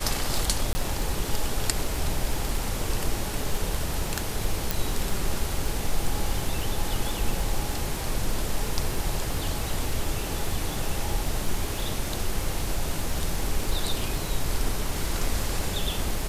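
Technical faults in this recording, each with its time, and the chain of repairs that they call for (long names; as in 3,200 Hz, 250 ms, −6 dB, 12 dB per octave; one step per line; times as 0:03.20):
surface crackle 51 per second −32 dBFS
0:00.73–0:00.75: drop-out 20 ms
0:04.71: click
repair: click removal
repair the gap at 0:00.73, 20 ms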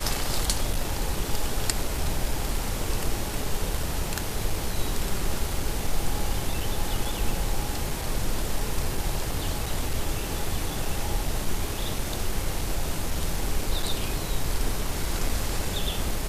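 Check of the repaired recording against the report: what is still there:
none of them is left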